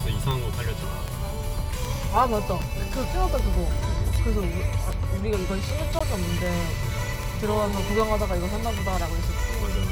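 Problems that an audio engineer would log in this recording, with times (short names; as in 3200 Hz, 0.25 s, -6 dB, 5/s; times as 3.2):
tick 78 rpm
5.99–6 gap 15 ms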